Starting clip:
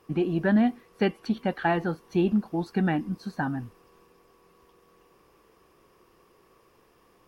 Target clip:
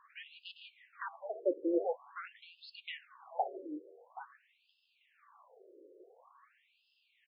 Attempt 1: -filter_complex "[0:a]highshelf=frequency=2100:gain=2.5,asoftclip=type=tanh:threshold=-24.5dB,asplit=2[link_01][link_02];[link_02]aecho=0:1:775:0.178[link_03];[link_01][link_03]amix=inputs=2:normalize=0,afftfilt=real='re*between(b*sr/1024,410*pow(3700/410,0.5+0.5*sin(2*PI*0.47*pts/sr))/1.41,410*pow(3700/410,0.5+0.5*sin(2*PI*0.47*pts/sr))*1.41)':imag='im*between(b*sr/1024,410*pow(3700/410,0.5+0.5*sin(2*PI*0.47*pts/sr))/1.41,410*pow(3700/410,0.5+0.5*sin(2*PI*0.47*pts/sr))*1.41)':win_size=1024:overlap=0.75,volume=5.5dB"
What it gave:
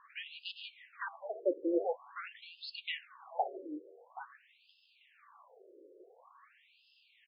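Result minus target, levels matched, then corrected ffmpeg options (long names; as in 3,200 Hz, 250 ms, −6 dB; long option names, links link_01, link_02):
4,000 Hz band +6.0 dB
-filter_complex "[0:a]highshelf=frequency=2100:gain=-7.5,asoftclip=type=tanh:threshold=-24.5dB,asplit=2[link_01][link_02];[link_02]aecho=0:1:775:0.178[link_03];[link_01][link_03]amix=inputs=2:normalize=0,afftfilt=real='re*between(b*sr/1024,410*pow(3700/410,0.5+0.5*sin(2*PI*0.47*pts/sr))/1.41,410*pow(3700/410,0.5+0.5*sin(2*PI*0.47*pts/sr))*1.41)':imag='im*between(b*sr/1024,410*pow(3700/410,0.5+0.5*sin(2*PI*0.47*pts/sr))/1.41,410*pow(3700/410,0.5+0.5*sin(2*PI*0.47*pts/sr))*1.41)':win_size=1024:overlap=0.75,volume=5.5dB"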